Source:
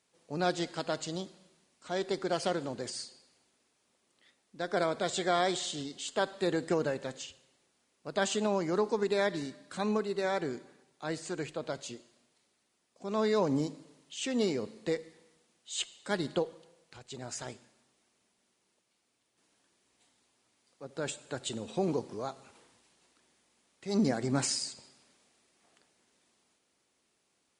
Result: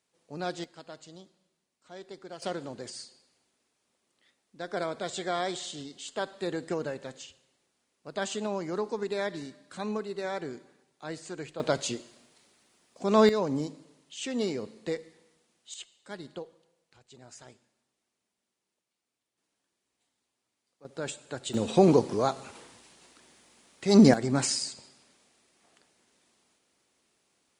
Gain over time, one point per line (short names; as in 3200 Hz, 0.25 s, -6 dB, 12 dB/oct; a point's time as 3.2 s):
-4 dB
from 0.64 s -12 dB
from 2.42 s -2.5 dB
from 11.6 s +10 dB
from 13.29 s -0.5 dB
from 15.74 s -9.5 dB
from 20.85 s +0.5 dB
from 21.54 s +11 dB
from 24.14 s +3 dB